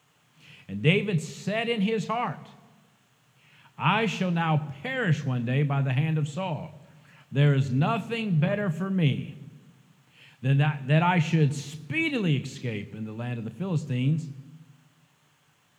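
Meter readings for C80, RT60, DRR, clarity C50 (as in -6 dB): 20.0 dB, no single decay rate, 10.0 dB, 19.0 dB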